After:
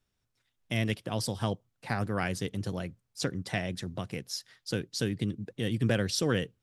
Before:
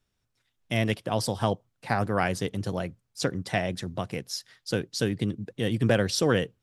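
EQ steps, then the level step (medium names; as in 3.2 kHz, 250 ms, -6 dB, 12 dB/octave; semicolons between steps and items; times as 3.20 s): dynamic bell 760 Hz, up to -6 dB, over -39 dBFS, Q 0.81; -2.5 dB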